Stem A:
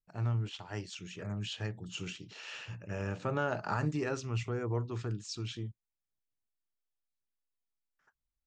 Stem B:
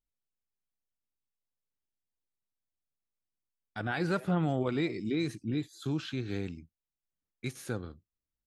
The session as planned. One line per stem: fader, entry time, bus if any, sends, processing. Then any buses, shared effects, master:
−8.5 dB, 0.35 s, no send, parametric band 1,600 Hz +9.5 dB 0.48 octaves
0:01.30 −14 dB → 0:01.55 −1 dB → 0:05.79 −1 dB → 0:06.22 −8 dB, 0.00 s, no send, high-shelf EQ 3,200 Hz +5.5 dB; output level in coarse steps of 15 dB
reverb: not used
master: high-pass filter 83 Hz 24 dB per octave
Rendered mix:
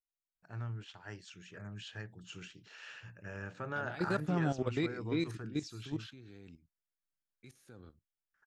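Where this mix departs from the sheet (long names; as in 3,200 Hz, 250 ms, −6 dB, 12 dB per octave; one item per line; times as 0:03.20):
stem B: missing high-shelf EQ 3,200 Hz +5.5 dB
master: missing high-pass filter 83 Hz 24 dB per octave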